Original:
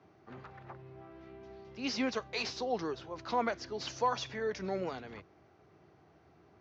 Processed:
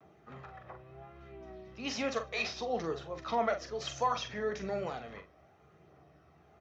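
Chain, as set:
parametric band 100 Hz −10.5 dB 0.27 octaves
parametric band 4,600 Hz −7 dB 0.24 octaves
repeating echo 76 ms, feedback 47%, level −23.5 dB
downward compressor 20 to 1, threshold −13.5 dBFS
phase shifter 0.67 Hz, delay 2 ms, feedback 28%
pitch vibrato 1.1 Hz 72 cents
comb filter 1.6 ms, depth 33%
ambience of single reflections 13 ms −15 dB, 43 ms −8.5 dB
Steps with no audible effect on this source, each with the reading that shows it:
downward compressor, threshold −13.5 dBFS: peak of its input −18.5 dBFS

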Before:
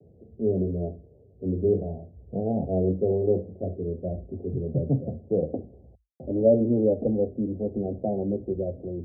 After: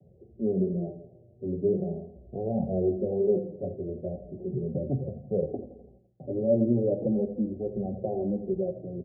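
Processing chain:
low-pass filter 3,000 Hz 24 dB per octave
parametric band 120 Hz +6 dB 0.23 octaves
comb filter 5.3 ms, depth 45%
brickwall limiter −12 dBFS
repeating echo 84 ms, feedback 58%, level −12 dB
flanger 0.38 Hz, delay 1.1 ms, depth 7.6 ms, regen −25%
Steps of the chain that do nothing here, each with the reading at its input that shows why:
low-pass filter 3,000 Hz: nothing at its input above 760 Hz

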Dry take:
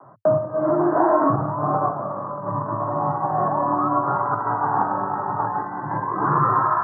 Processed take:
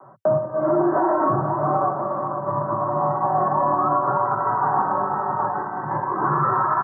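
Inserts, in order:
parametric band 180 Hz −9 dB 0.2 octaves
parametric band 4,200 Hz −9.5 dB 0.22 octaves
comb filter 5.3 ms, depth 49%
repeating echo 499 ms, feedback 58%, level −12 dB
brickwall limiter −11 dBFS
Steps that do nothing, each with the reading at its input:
parametric band 4,200 Hz: nothing at its input above 1,700 Hz

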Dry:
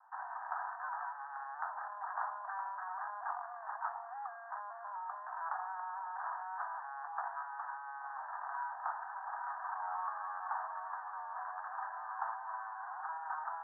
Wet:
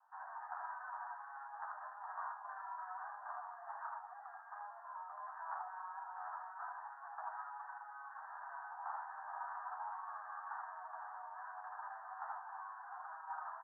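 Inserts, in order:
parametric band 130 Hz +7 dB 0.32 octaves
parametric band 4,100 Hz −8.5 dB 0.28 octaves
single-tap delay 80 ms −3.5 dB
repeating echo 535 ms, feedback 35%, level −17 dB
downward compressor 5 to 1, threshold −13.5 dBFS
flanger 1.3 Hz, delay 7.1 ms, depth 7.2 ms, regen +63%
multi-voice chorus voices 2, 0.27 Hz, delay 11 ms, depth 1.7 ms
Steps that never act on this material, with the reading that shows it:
parametric band 130 Hz: nothing at its input below 570 Hz
parametric band 4,100 Hz: nothing at its input above 1,900 Hz
downward compressor, threshold −13.5 dBFS: peak of its input −25.0 dBFS

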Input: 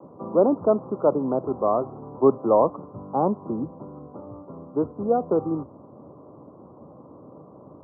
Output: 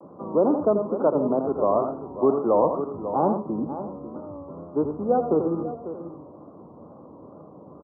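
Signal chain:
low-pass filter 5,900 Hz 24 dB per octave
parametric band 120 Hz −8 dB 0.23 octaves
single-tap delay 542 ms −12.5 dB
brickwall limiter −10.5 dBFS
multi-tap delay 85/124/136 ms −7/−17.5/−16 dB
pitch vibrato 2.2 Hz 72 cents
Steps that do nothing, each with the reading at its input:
low-pass filter 5,900 Hz: nothing at its input above 1,300 Hz

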